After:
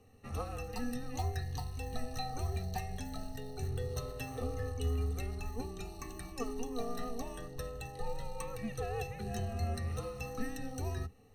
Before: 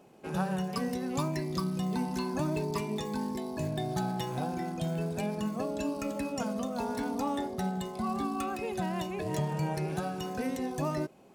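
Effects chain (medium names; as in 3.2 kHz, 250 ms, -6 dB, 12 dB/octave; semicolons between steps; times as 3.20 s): rippled EQ curve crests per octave 1.9, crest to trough 16 dB; frequency shift -240 Hz; trim -6.5 dB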